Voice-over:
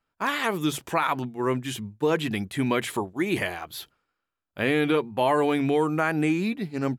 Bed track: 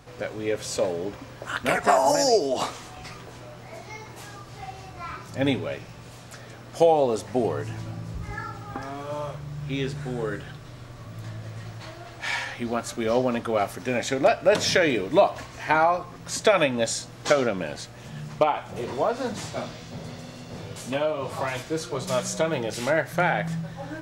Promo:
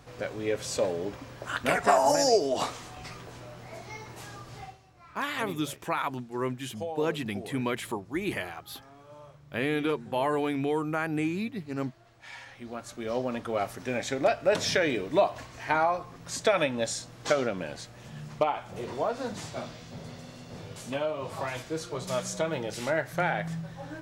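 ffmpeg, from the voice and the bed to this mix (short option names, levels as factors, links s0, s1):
-filter_complex "[0:a]adelay=4950,volume=0.531[s0];[1:a]volume=3.16,afade=t=out:st=4.57:d=0.22:silence=0.177828,afade=t=in:st=12.3:d=1.37:silence=0.237137[s1];[s0][s1]amix=inputs=2:normalize=0"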